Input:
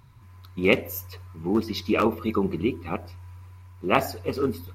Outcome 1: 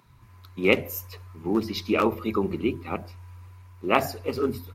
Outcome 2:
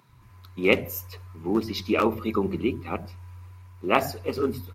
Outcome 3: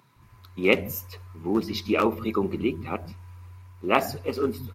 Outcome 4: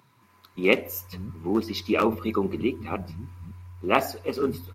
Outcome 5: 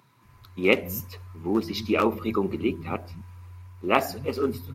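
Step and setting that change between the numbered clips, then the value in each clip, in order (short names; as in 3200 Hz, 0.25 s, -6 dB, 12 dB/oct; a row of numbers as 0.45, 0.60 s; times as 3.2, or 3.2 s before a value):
bands offset in time, time: 60, 90, 160, 550, 250 ms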